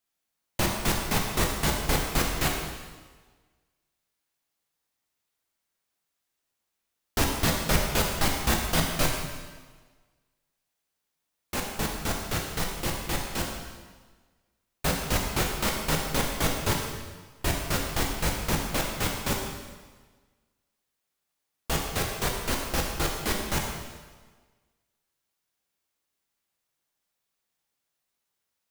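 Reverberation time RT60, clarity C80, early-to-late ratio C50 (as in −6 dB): 1.4 s, 4.5 dB, 3.0 dB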